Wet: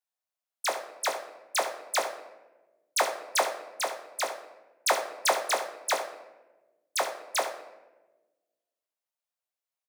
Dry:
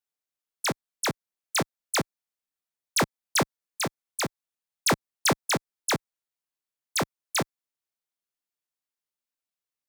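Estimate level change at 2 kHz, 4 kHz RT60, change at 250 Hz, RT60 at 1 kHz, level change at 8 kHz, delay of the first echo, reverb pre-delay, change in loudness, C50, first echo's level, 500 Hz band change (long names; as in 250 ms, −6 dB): −1.5 dB, 0.65 s, −18.0 dB, 0.95 s, −2.5 dB, 72 ms, 5 ms, −1.5 dB, 7.5 dB, −11.0 dB, +1.5 dB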